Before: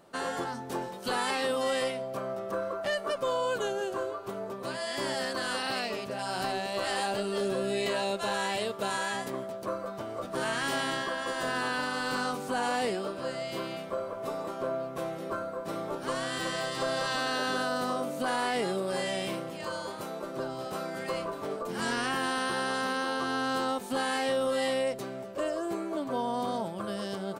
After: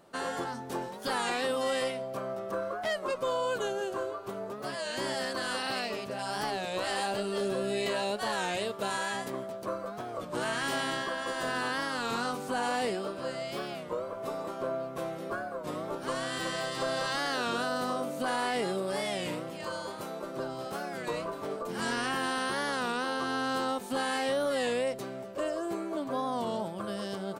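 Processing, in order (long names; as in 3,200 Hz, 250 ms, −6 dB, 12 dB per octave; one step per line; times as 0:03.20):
wow of a warped record 33 1/3 rpm, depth 160 cents
level −1 dB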